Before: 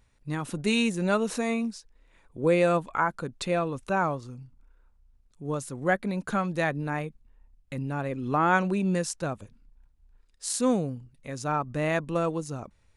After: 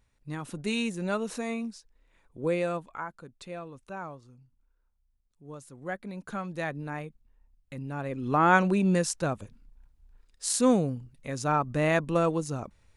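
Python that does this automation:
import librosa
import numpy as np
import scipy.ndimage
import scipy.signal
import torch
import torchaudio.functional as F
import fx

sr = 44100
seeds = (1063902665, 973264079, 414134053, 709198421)

y = fx.gain(x, sr, db=fx.line((2.48, -5.0), (3.17, -13.0), (5.5, -13.0), (6.72, -5.5), (7.81, -5.5), (8.48, 2.0)))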